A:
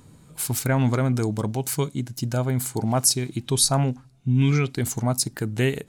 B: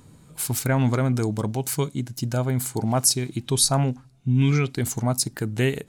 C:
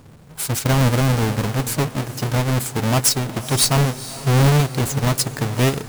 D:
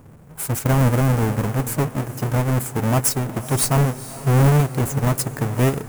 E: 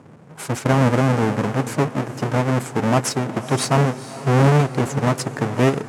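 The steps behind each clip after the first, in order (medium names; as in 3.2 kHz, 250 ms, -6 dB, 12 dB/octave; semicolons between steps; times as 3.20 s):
no audible change
square wave that keeps the level; echo that smears into a reverb 466 ms, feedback 56%, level -14.5 dB
peaking EQ 4.1 kHz -11.5 dB 1.4 oct
band-pass 160–5700 Hz; trim +3.5 dB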